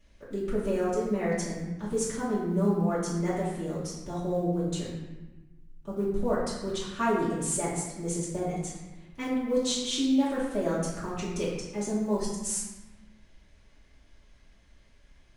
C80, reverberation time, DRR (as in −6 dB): 3.5 dB, 1.1 s, −11.0 dB